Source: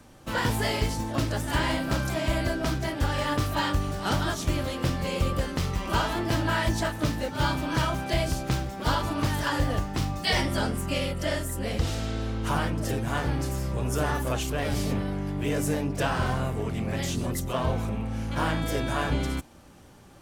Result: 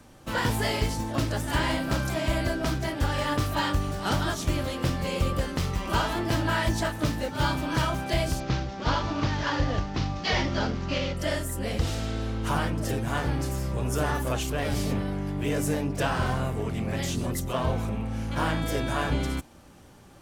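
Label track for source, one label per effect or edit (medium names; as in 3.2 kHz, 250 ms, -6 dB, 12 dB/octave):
8.400000	11.170000	CVSD coder 32 kbps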